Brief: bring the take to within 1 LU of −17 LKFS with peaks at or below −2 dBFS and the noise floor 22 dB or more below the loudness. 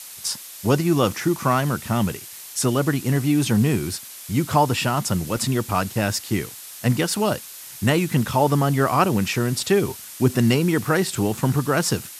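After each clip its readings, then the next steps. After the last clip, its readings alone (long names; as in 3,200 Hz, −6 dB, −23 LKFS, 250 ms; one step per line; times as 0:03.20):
number of dropouts 1; longest dropout 2.0 ms; background noise floor −39 dBFS; target noise floor −44 dBFS; integrated loudness −21.5 LKFS; sample peak −4.5 dBFS; target loudness −17.0 LKFS
→ repair the gap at 0:05.37, 2 ms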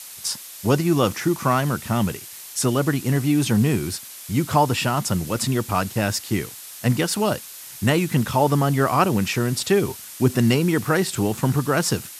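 number of dropouts 0; background noise floor −39 dBFS; target noise floor −44 dBFS
→ broadband denoise 6 dB, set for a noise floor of −39 dBFS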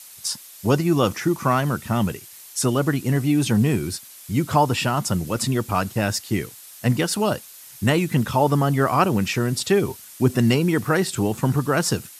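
background noise floor −44 dBFS; integrated loudness −22.0 LKFS; sample peak −4.5 dBFS; target loudness −17.0 LKFS
→ level +5 dB
brickwall limiter −2 dBFS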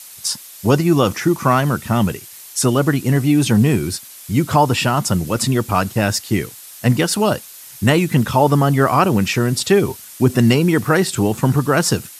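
integrated loudness −17.0 LKFS; sample peak −2.0 dBFS; background noise floor −39 dBFS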